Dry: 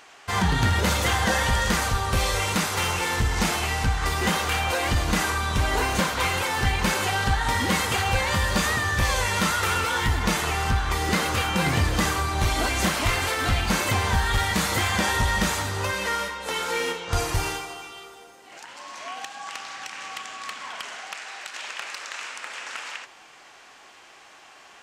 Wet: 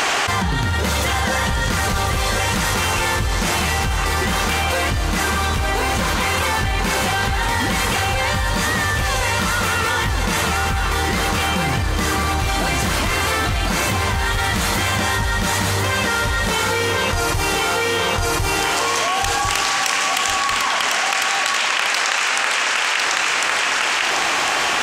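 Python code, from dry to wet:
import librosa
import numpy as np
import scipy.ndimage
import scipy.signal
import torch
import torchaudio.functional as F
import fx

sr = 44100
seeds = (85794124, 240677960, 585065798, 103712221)

y = fx.high_shelf(x, sr, hz=8600.0, db=11.0, at=(18.69, 20.36))
y = fx.echo_feedback(y, sr, ms=1052, feedback_pct=25, wet_db=-6)
y = fx.env_flatten(y, sr, amount_pct=100)
y = F.gain(torch.from_numpy(y), -2.0).numpy()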